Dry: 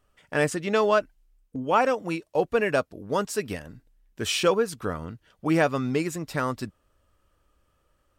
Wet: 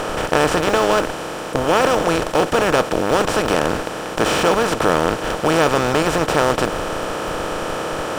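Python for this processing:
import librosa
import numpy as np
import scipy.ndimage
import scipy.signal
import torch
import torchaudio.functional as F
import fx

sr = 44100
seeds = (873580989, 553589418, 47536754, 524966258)

p1 = fx.bin_compress(x, sr, power=0.2)
p2 = fx.schmitt(p1, sr, flips_db=-13.5)
p3 = p1 + (p2 * 10.0 ** (-10.0 / 20.0))
y = p3 * 10.0 ** (-2.0 / 20.0)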